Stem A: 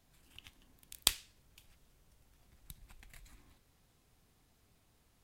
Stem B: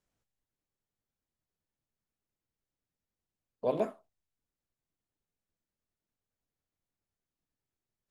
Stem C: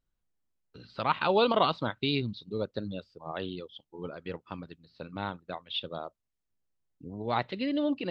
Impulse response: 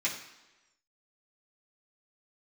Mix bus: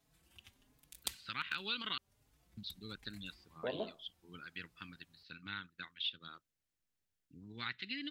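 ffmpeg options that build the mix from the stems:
-filter_complex "[0:a]highpass=45,asplit=2[a][b];[b]adelay=4.3,afreqshift=1.3[c];[a][c]amix=inputs=2:normalize=1,volume=-1dB[d];[1:a]lowpass=f=1.2k:p=1,volume=-3.5dB[e];[2:a]firequalizer=gain_entry='entry(290,0);entry(610,-21);entry(1500,14)':delay=0.05:min_phase=1,asoftclip=type=hard:threshold=-5.5dB,adelay=300,volume=-12.5dB,asplit=3[f][g][h];[f]atrim=end=1.98,asetpts=PTS-STARTPTS,afade=t=out:st=1.976:d=0.004:c=hsin[i];[g]atrim=start=1.98:end=2.57,asetpts=PTS-STARTPTS,volume=0[j];[h]atrim=start=2.57,asetpts=PTS-STARTPTS,afade=t=in:d=0.004:c=hsin[k];[i][j][k]concat=n=3:v=0:a=1[l];[d][e][l]amix=inputs=3:normalize=0,acompressor=threshold=-40dB:ratio=2"

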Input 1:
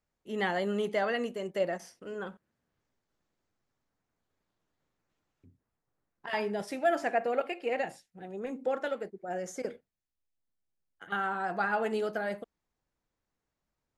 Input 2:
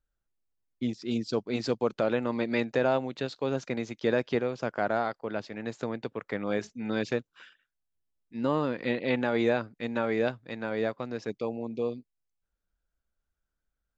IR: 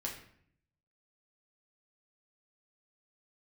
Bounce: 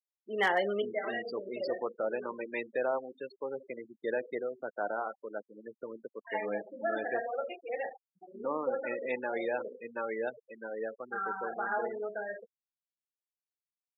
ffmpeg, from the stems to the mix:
-filter_complex "[0:a]volume=1.5dB,asplit=2[a][b];[b]volume=-6dB[c];[1:a]bandreject=f=680:w=19,volume=-6dB,asplit=3[d][e][f];[e]volume=-8dB[g];[f]apad=whole_len=616340[h];[a][h]sidechaincompress=threshold=-49dB:ratio=20:attack=5.2:release=1370[i];[2:a]atrim=start_sample=2205[j];[c][g]amix=inputs=2:normalize=0[k];[k][j]afir=irnorm=-1:irlink=0[l];[i][d][l]amix=inputs=3:normalize=0,afftfilt=real='re*gte(hypot(re,im),0.0316)':imag='im*gte(hypot(re,im),0.0316)':win_size=1024:overlap=0.75,highpass=440,volume=18.5dB,asoftclip=hard,volume=-18.5dB"

